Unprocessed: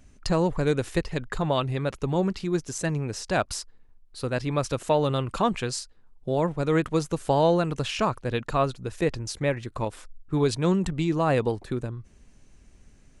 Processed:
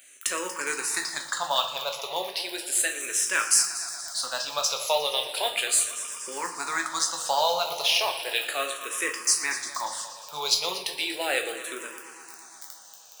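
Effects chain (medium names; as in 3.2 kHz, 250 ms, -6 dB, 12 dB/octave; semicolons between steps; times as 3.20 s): crackle 12 per s -34 dBFS; tilt EQ +4.5 dB/octave; in parallel at -1 dB: compression 10:1, threshold -39 dBFS, peak gain reduction 21.5 dB; on the sum: high-pass 570 Hz 12 dB/octave; multi-head delay 118 ms, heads first and second, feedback 70%, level -16.5 dB; short-mantissa float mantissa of 2-bit; on a send at -5 dB: treble shelf 4.7 kHz +7 dB + reverberation RT60 0.55 s, pre-delay 5 ms; on the sum: barber-pole phaser -0.35 Hz; trim +1 dB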